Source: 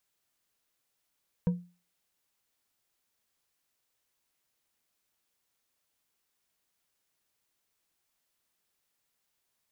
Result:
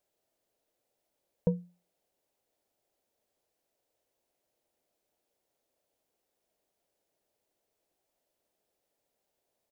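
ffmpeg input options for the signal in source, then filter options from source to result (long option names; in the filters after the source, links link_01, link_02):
-f lavfi -i "aevalsrc='0.1*pow(10,-3*t/0.34)*sin(2*PI*176*t)+0.0282*pow(10,-3*t/0.167)*sin(2*PI*485.2*t)+0.00794*pow(10,-3*t/0.104)*sin(2*PI*951.1*t)+0.00224*pow(10,-3*t/0.073)*sin(2*PI*1572.2*t)+0.000631*pow(10,-3*t/0.055)*sin(2*PI*2347.8*t)':duration=0.89:sample_rate=44100"
-af "firequalizer=gain_entry='entry(160,0);entry(330,7);entry(600,12);entry(1100,-5)':delay=0.05:min_phase=1"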